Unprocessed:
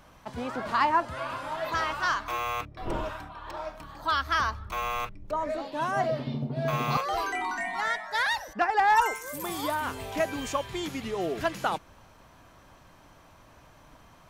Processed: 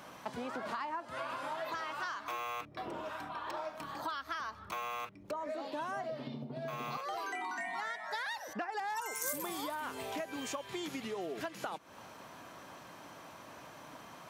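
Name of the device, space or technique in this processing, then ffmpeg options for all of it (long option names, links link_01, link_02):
serial compression, leveller first: -filter_complex "[0:a]acompressor=threshold=-30dB:ratio=2,acompressor=threshold=-42dB:ratio=6,highpass=190,asettb=1/sr,asplit=3[link_01][link_02][link_03];[link_01]atrim=end=8.724[link_04];[link_02]atrim=start=8.72:end=9.33,asetpts=PTS-STARTPTS,afade=type=in:duration=0.004:curve=qsin,afade=type=out:start_time=0.606:duration=0.004:curve=qsin,bass=frequency=250:gain=7,treble=frequency=4000:gain=10[link_05];[link_03]atrim=start=9.326[link_06];[link_04][link_05]acrossfade=duration=0.004:curve1=hsin:curve2=qsin[link_07];[link_07][link_06]acrossfade=duration=0.004:curve1=qsin:curve2=hsin,volume=5dB"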